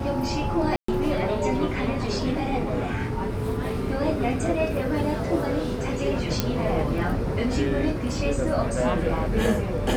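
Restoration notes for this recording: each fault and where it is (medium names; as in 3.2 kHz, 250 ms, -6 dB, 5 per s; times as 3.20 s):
0.76–0.88 s: dropout 124 ms
6.40 s: pop -7 dBFS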